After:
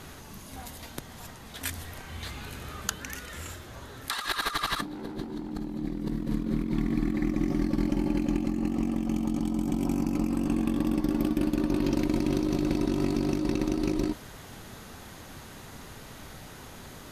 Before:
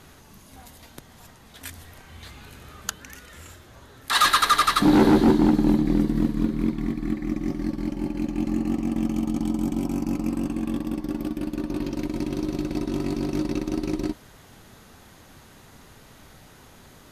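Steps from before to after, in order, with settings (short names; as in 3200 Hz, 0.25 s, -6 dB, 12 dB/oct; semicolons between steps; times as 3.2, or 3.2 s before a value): negative-ratio compressor -29 dBFS, ratio -1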